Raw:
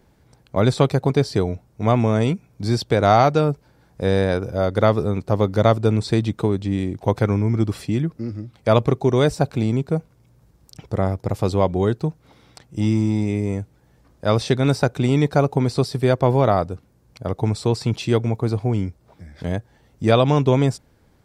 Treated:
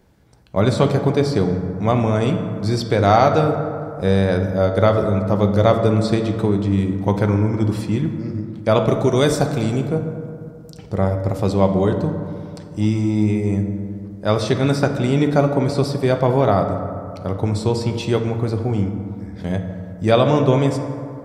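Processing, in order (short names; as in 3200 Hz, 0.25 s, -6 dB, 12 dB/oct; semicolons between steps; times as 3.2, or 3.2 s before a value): 8.88–9.88 high shelf 4200 Hz +10 dB; reverb RT60 2.4 s, pre-delay 5 ms, DRR 4.5 dB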